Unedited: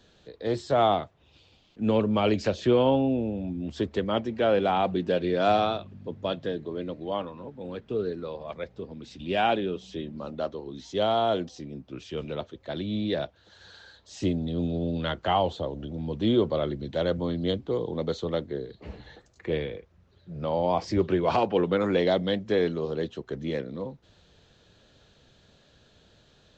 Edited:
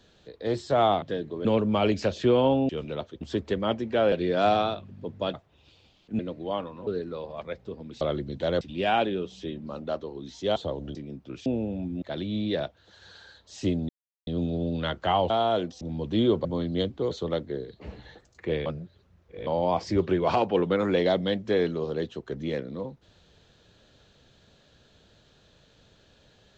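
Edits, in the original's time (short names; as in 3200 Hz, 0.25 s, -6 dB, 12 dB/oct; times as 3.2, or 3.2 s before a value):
1.02–1.87 swap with 6.37–6.8
3.11–3.67 swap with 12.09–12.61
4.58–5.15 cut
7.48–7.98 cut
11.07–11.58 swap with 15.51–15.9
14.48 insert silence 0.38 s
16.54–17.14 move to 9.12
17.8–18.12 cut
19.67–20.48 reverse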